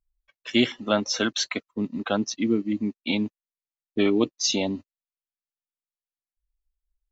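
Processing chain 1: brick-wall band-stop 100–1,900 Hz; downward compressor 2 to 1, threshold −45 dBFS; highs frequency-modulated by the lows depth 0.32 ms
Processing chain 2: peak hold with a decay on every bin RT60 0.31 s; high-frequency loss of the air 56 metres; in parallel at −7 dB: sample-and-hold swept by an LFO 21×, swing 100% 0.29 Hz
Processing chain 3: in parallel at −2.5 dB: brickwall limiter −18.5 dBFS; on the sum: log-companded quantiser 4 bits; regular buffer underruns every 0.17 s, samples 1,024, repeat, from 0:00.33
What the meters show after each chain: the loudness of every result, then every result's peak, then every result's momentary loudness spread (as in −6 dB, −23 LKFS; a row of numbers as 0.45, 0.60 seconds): −41.5, −23.0, −22.0 LKFS; −21.5, −4.5, −6.0 dBFS; 13, 7, 6 LU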